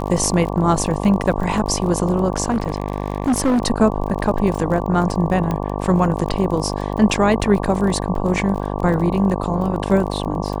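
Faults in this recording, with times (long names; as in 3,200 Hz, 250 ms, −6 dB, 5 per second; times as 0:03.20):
mains buzz 50 Hz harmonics 23 −24 dBFS
surface crackle 33 per second −26 dBFS
0:02.50–0:03.62: clipping −13.5 dBFS
0:05.51: click −11 dBFS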